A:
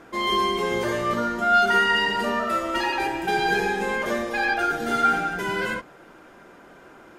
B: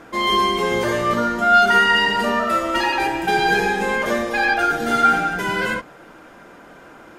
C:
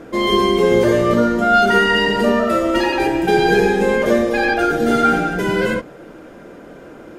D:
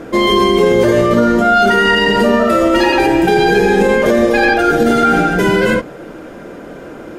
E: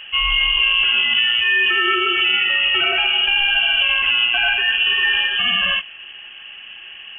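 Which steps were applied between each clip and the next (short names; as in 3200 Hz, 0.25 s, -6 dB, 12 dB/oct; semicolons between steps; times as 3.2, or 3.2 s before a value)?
notch 380 Hz, Q 12; gain +5 dB
resonant low shelf 670 Hz +7 dB, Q 1.5
maximiser +9 dB; gain -2 dB
inverted band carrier 3200 Hz; gain -6 dB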